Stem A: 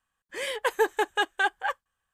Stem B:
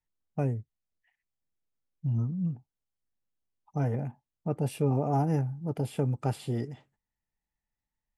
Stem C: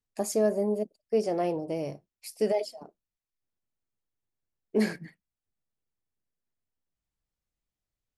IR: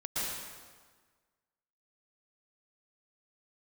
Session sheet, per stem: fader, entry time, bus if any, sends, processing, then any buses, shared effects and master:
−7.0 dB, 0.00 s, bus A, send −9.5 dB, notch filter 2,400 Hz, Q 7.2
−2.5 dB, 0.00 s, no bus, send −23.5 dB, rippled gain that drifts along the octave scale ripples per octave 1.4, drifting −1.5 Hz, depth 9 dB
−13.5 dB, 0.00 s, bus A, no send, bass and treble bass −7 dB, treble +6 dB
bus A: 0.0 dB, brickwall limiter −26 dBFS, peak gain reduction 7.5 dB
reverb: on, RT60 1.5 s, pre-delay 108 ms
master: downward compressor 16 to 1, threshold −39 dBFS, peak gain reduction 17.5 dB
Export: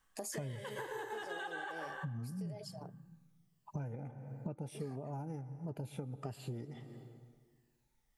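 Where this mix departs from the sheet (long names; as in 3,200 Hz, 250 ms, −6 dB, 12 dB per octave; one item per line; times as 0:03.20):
stem A −7.0 dB → +1.5 dB
stem B −2.5 dB → +7.0 dB
stem C −13.5 dB → −1.5 dB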